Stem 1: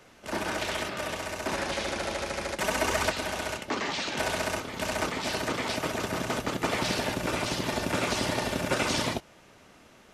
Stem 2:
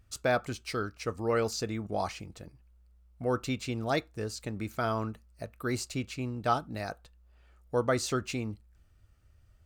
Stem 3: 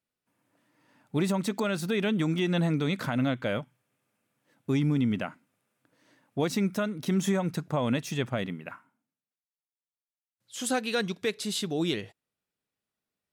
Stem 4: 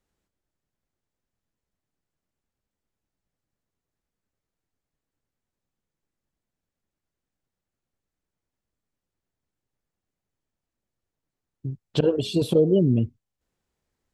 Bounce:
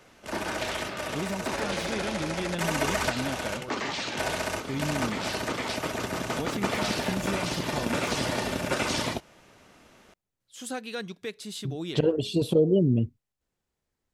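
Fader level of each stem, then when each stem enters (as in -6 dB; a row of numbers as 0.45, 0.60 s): -0.5, -14.0, -6.5, -2.5 dB; 0.00, 0.35, 0.00, 0.00 s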